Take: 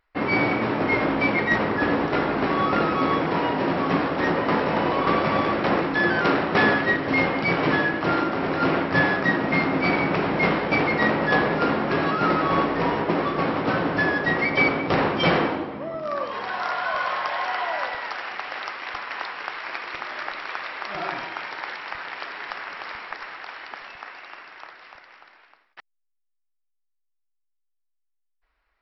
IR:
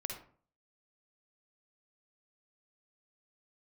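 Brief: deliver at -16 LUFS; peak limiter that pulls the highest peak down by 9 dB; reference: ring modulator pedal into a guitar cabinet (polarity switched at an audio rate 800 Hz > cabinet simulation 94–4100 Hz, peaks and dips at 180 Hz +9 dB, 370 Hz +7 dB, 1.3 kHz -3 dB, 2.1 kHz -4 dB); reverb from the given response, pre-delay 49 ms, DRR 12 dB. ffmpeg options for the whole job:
-filter_complex "[0:a]alimiter=limit=0.141:level=0:latency=1,asplit=2[s0][s1];[1:a]atrim=start_sample=2205,adelay=49[s2];[s1][s2]afir=irnorm=-1:irlink=0,volume=0.251[s3];[s0][s3]amix=inputs=2:normalize=0,aeval=exprs='val(0)*sgn(sin(2*PI*800*n/s))':c=same,highpass=94,equalizer=f=180:t=q:w=4:g=9,equalizer=f=370:t=q:w=4:g=7,equalizer=f=1300:t=q:w=4:g=-3,equalizer=f=2100:t=q:w=4:g=-4,lowpass=f=4100:w=0.5412,lowpass=f=4100:w=1.3066,volume=3.16"

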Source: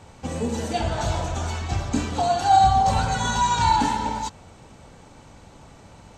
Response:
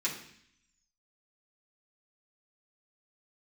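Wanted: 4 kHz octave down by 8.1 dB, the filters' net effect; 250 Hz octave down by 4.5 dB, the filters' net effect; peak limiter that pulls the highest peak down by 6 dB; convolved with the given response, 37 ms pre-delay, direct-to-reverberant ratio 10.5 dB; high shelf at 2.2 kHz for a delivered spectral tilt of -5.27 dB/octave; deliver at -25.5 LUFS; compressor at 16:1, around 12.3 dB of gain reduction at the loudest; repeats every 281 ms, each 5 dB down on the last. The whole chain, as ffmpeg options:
-filter_complex "[0:a]equalizer=f=250:t=o:g=-5.5,highshelf=f=2200:g=-4.5,equalizer=f=4000:t=o:g=-5.5,acompressor=threshold=0.0562:ratio=16,alimiter=limit=0.0668:level=0:latency=1,aecho=1:1:281|562|843|1124|1405|1686|1967:0.562|0.315|0.176|0.0988|0.0553|0.031|0.0173,asplit=2[s0][s1];[1:a]atrim=start_sample=2205,adelay=37[s2];[s1][s2]afir=irnorm=-1:irlink=0,volume=0.158[s3];[s0][s3]amix=inputs=2:normalize=0,volume=2"

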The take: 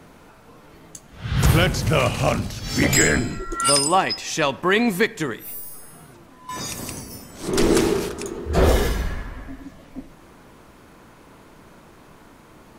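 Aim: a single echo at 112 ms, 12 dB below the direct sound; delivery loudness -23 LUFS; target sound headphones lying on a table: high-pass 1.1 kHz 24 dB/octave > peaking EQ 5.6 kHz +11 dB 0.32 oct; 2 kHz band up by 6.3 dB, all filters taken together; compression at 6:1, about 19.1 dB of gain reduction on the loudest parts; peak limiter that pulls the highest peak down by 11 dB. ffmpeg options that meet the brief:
-af "equalizer=f=2000:t=o:g=7.5,acompressor=threshold=0.0251:ratio=6,alimiter=level_in=1.88:limit=0.0631:level=0:latency=1,volume=0.531,highpass=f=1100:w=0.5412,highpass=f=1100:w=1.3066,equalizer=f=5600:t=o:w=0.32:g=11,aecho=1:1:112:0.251,volume=7.08"

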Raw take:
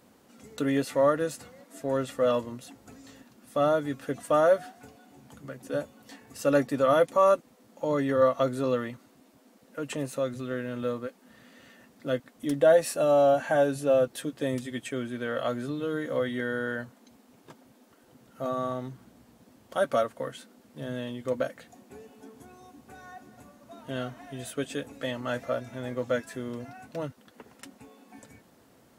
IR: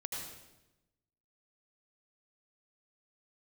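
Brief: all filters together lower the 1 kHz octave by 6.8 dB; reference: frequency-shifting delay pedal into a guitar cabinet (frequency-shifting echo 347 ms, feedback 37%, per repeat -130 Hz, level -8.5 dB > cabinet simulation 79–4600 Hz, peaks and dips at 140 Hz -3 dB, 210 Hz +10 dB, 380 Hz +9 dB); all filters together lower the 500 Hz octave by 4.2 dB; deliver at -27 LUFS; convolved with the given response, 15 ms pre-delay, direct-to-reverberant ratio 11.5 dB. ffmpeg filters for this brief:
-filter_complex "[0:a]equalizer=f=500:t=o:g=-4.5,equalizer=f=1000:t=o:g=-8.5,asplit=2[s0][s1];[1:a]atrim=start_sample=2205,adelay=15[s2];[s1][s2]afir=irnorm=-1:irlink=0,volume=0.251[s3];[s0][s3]amix=inputs=2:normalize=0,asplit=5[s4][s5][s6][s7][s8];[s5]adelay=347,afreqshift=-130,volume=0.376[s9];[s6]adelay=694,afreqshift=-260,volume=0.14[s10];[s7]adelay=1041,afreqshift=-390,volume=0.0513[s11];[s8]adelay=1388,afreqshift=-520,volume=0.0191[s12];[s4][s9][s10][s11][s12]amix=inputs=5:normalize=0,highpass=79,equalizer=f=140:t=q:w=4:g=-3,equalizer=f=210:t=q:w=4:g=10,equalizer=f=380:t=q:w=4:g=9,lowpass=f=4600:w=0.5412,lowpass=f=4600:w=1.3066,volume=1.5"

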